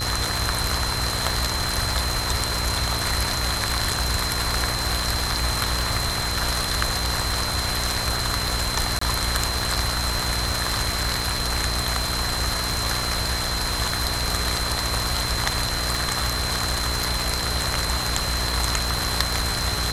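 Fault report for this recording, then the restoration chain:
buzz 60 Hz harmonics 40 -30 dBFS
crackle 46 per s -27 dBFS
whine 4.1 kHz -28 dBFS
8.99–9.01 s: dropout 24 ms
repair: de-click; de-hum 60 Hz, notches 40; band-stop 4.1 kHz, Q 30; interpolate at 8.99 s, 24 ms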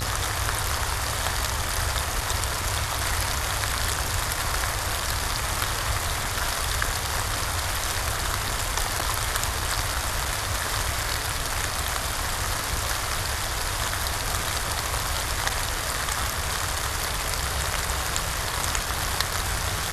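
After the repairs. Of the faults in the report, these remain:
nothing left

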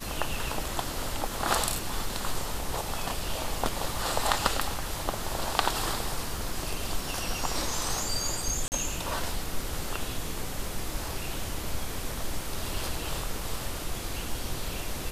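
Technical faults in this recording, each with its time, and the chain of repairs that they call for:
8.68–8.72 s: dropout 39 ms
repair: interpolate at 8.68 s, 39 ms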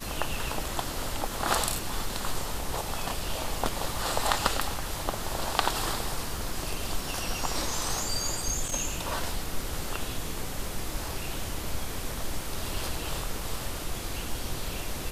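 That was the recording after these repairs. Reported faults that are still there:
nothing left

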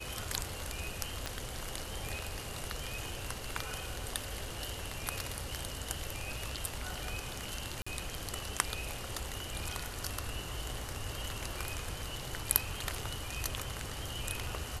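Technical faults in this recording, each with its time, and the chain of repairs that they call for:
1.26 s: pop -20 dBFS
7.82–7.87 s: dropout 45 ms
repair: de-click; interpolate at 7.82 s, 45 ms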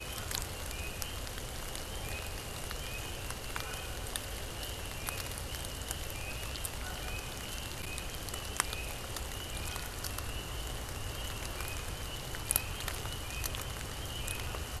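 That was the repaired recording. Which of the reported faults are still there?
1.26 s: pop

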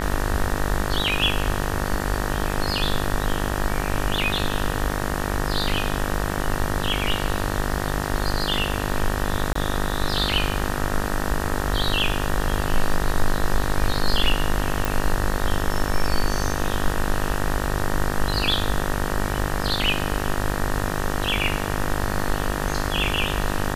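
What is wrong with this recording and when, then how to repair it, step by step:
buzz 50 Hz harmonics 38 -27 dBFS
9.53–9.55 s: dropout 24 ms
14.85 s: pop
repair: de-click; de-hum 50 Hz, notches 38; interpolate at 9.53 s, 24 ms

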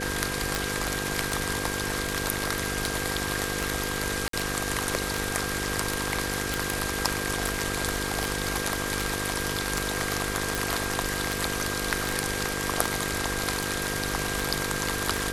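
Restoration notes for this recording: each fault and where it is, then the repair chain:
buzz 50 Hz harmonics 10 -34 dBFS
tick 78 rpm
whine 1.6 kHz -35 dBFS
4.28–4.33 s: dropout 53 ms
6.54 s: pop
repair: de-click; band-stop 1.6 kHz, Q 30; de-hum 50 Hz, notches 10; interpolate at 4.28 s, 53 ms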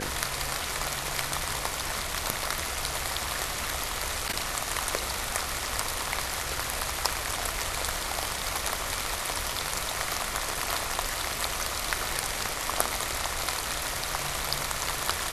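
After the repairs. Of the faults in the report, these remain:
nothing left

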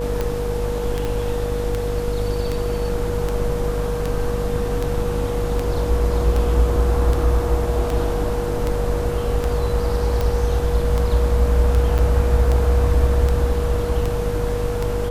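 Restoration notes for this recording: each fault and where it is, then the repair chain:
buzz 50 Hz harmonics 20 -25 dBFS
tick 78 rpm -10 dBFS
whine 480 Hz -24 dBFS
1.05 s: pop
11.98–11.99 s: dropout 7.5 ms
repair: de-click; de-hum 50 Hz, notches 20; band-stop 480 Hz, Q 30; interpolate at 11.98 s, 7.5 ms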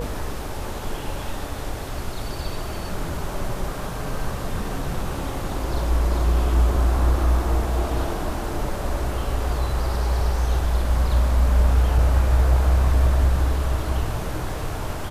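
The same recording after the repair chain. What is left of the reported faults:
1.05 s: pop

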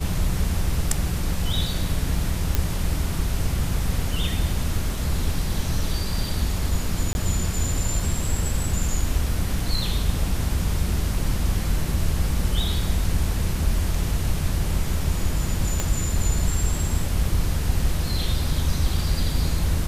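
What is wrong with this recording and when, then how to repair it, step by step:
2.55 s: pop -6 dBFS
7.13–7.15 s: dropout 21 ms
15.80 s: pop -9 dBFS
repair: de-click; interpolate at 7.13 s, 21 ms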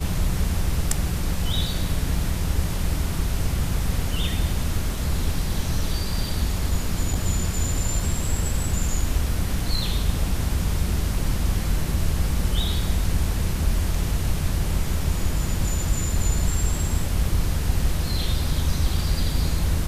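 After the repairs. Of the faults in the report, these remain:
15.80 s: pop

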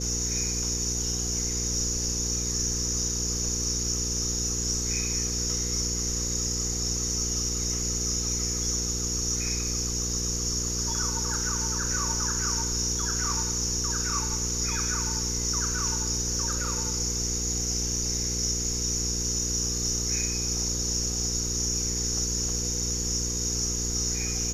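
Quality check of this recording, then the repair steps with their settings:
hum 60 Hz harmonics 8 -33 dBFS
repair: de-hum 60 Hz, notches 8

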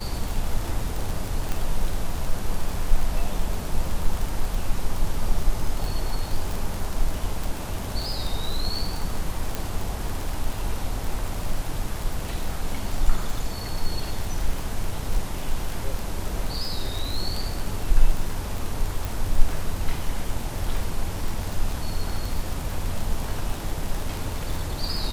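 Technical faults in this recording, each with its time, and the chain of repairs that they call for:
crackle 43 per s -25 dBFS
1.52 s: pop
9.55 s: pop
19.05 s: pop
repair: de-click

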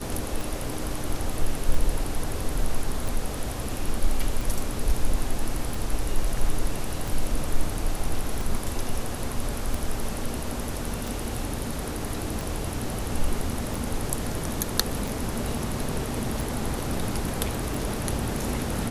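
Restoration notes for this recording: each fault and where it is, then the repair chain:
tick 45 rpm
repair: de-click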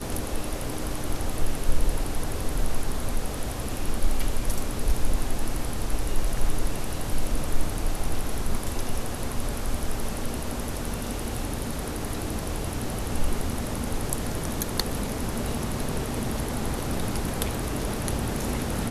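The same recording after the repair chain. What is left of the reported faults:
nothing left

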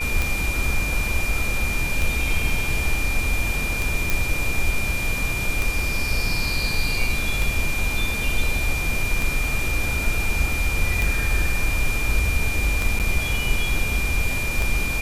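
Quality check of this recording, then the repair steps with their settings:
tick 33 1/3 rpm
whine 2.4 kHz -26 dBFS
4.10 s: pop
12.99–13.00 s: dropout 8.4 ms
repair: de-click; band-stop 2.4 kHz, Q 30; interpolate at 12.99 s, 8.4 ms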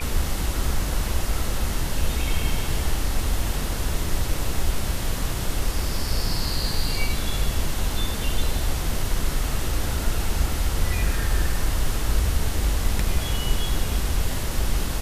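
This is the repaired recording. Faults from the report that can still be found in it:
nothing left

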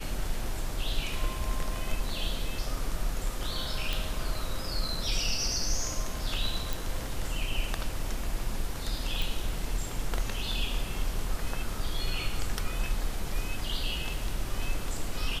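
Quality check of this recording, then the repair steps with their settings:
3.93 s: pop
6.73 s: pop
9.22 s: pop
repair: de-click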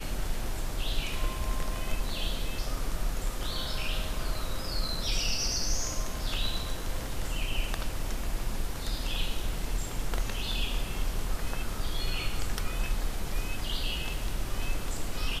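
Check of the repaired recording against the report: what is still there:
nothing left

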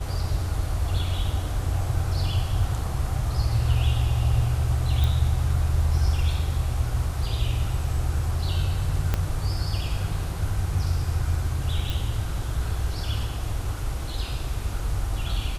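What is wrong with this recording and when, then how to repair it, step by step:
5.04 s: pop
9.14 s: pop -10 dBFS
11.90 s: pop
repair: de-click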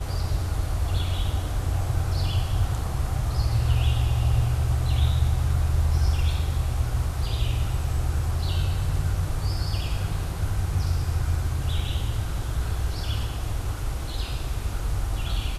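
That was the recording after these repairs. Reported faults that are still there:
9.14 s: pop

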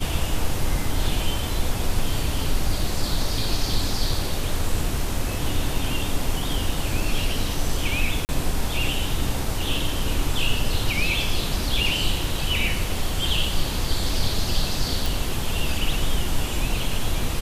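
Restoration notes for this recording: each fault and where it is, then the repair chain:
8.25–8.29 s: dropout 39 ms
15.06 s: pop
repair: de-click; interpolate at 8.25 s, 39 ms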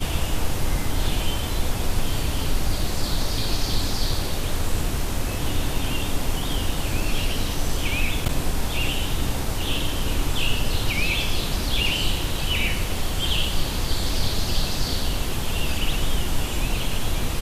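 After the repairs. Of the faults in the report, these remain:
nothing left

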